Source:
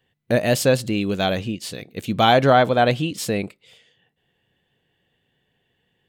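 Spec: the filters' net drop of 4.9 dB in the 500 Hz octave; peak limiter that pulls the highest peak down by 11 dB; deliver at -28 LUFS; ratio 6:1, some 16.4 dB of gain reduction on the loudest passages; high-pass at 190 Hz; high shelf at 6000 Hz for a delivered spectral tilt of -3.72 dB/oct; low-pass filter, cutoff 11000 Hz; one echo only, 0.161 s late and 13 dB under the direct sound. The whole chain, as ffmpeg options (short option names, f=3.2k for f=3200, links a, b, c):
-af "highpass=190,lowpass=11k,equalizer=f=500:t=o:g=-6,highshelf=f=6k:g=-4,acompressor=threshold=-31dB:ratio=6,alimiter=level_in=3dB:limit=-24dB:level=0:latency=1,volume=-3dB,aecho=1:1:161:0.224,volume=10.5dB"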